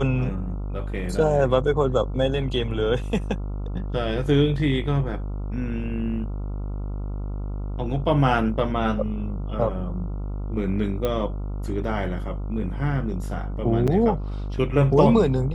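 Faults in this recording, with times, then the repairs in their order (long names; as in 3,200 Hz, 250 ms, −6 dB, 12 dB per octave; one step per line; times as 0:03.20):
mains buzz 50 Hz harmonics 28 −29 dBFS
0:11.05: click −13 dBFS
0:13.87–0:13.88: drop-out 7 ms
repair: click removal
hum removal 50 Hz, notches 28
repair the gap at 0:13.87, 7 ms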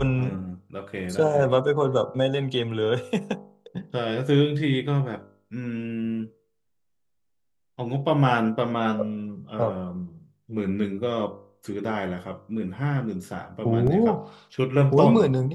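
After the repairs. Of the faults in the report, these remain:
none of them is left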